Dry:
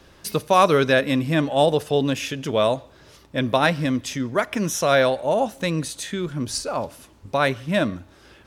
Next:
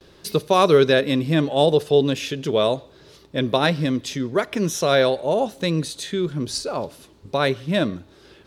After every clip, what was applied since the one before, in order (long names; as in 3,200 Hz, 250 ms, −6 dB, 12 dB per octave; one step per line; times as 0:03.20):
noise gate with hold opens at −44 dBFS
graphic EQ with 15 bands 160 Hz +5 dB, 400 Hz +9 dB, 4,000 Hz +7 dB
level −3 dB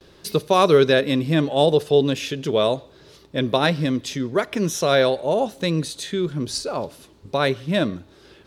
no processing that can be heard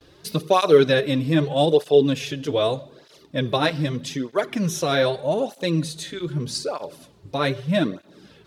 rectangular room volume 3,400 cubic metres, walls furnished, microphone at 0.44 metres
through-zero flanger with one copy inverted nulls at 0.81 Hz, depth 5.6 ms
level +1 dB